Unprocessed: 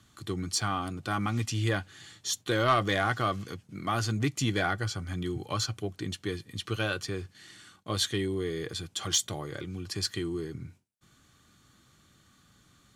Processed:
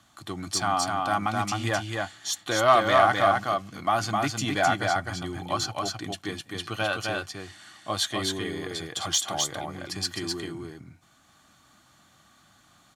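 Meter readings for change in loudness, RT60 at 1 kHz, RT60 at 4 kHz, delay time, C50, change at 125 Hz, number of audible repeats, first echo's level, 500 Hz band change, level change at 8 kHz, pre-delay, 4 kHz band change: +4.5 dB, no reverb, no reverb, 259 ms, no reverb, -3.0 dB, 1, -3.0 dB, +6.0 dB, +3.5 dB, no reverb, +3.5 dB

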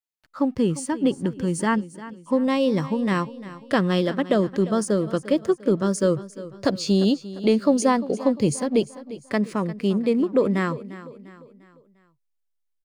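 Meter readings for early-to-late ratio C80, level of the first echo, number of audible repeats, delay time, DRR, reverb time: no reverb, -16.0 dB, 3, 349 ms, no reverb, no reverb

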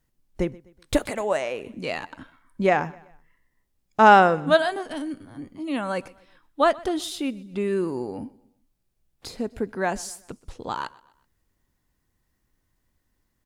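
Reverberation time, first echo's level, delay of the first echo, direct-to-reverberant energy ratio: no reverb, -22.5 dB, 126 ms, no reverb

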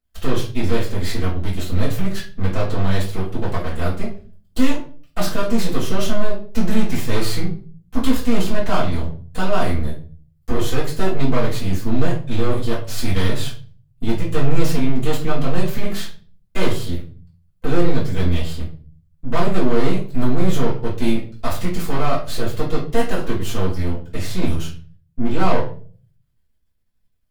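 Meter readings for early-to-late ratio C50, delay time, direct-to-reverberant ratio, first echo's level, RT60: 8.0 dB, no echo, -7.5 dB, no echo, 0.40 s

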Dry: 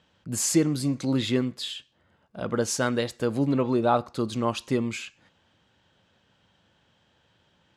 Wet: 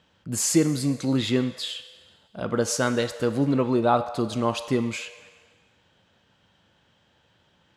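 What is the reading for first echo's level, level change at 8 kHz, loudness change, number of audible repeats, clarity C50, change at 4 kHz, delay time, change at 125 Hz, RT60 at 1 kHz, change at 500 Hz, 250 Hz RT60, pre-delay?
no echo, +1.5 dB, +1.5 dB, no echo, 11.5 dB, +2.0 dB, no echo, +1.5 dB, 1.6 s, +2.0 dB, 1.7 s, 6 ms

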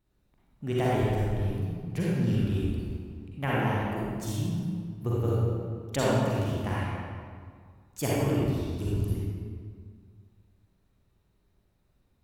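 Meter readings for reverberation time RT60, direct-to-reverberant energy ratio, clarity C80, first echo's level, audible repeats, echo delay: 2.0 s, -7.5 dB, -2.0 dB, no echo, no echo, no echo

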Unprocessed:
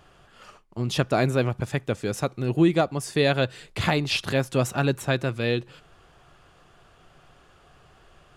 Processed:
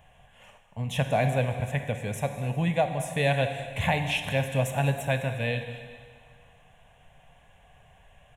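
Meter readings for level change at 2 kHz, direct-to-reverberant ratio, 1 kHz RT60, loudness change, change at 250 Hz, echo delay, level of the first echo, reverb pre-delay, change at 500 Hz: -1.5 dB, 6.5 dB, 2.0 s, -3.0 dB, -7.0 dB, 204 ms, -18.0 dB, 22 ms, -3.5 dB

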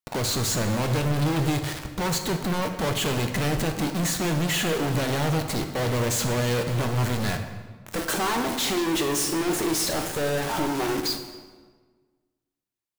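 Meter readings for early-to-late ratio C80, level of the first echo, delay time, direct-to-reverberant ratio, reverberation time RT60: 9.0 dB, no echo, no echo, 5.0 dB, 1.5 s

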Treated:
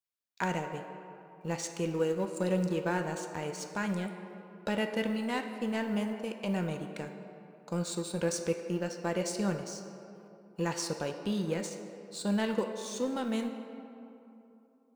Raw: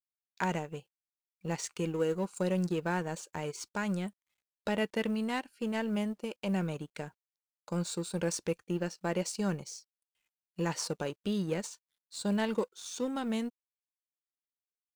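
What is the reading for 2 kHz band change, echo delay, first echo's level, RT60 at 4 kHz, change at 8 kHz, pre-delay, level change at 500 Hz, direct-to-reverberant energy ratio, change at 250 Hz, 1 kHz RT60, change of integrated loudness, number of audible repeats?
+1.0 dB, no echo, no echo, 1.5 s, +0.5 dB, 4 ms, +1.5 dB, 5.0 dB, +0.5 dB, 2.9 s, +0.5 dB, no echo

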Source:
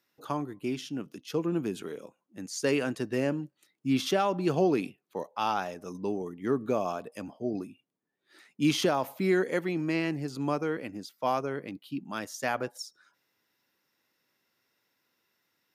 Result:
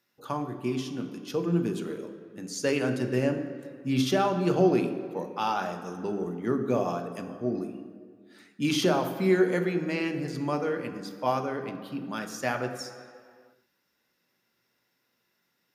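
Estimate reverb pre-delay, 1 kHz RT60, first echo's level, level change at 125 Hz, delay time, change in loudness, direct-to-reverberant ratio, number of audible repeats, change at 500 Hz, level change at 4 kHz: 3 ms, 2.1 s, no echo, +4.0 dB, no echo, +2.0 dB, 5.0 dB, no echo, +2.5 dB, +1.0 dB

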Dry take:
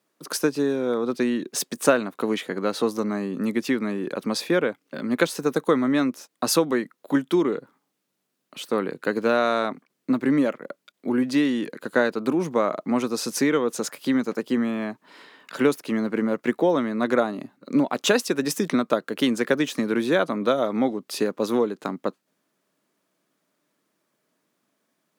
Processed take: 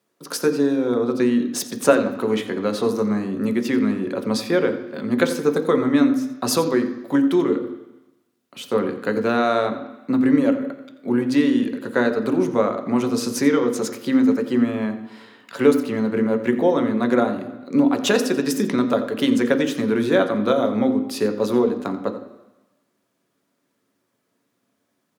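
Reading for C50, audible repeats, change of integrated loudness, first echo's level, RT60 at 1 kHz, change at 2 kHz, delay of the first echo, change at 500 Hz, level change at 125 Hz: 10.0 dB, 1, +3.5 dB, -14.0 dB, 1.1 s, +0.5 dB, 87 ms, +3.5 dB, +4.5 dB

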